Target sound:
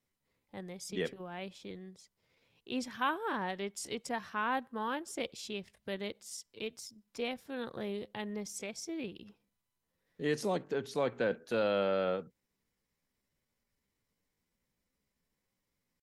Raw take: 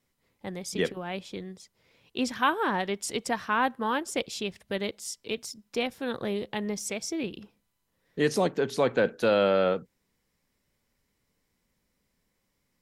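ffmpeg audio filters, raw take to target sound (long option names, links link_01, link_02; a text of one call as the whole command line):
ffmpeg -i in.wav -af "atempo=0.8,volume=-8dB" out.wav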